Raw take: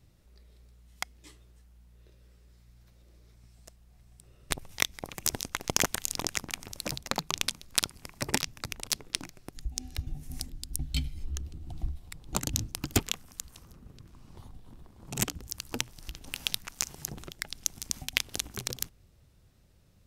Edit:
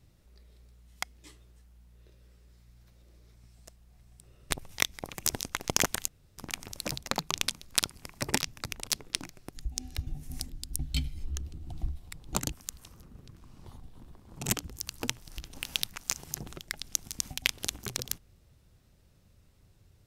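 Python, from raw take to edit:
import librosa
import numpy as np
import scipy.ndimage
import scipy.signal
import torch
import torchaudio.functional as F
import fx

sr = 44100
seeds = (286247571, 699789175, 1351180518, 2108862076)

y = fx.edit(x, sr, fx.room_tone_fill(start_s=6.08, length_s=0.3),
    fx.cut(start_s=12.52, length_s=0.71), tone=tone)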